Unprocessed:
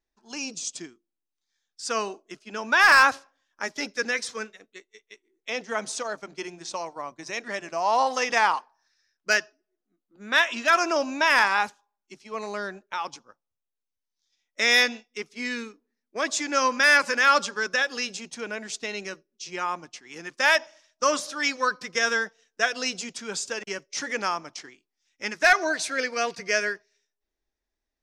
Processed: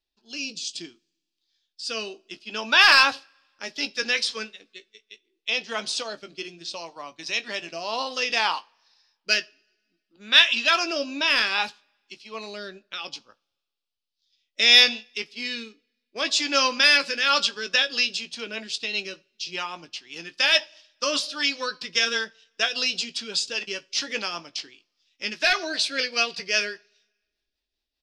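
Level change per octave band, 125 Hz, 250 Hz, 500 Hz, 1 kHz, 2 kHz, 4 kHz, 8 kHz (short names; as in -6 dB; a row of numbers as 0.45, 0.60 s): n/a, -1.5 dB, -3.0 dB, -4.5 dB, -1.0 dB, +9.0 dB, -1.0 dB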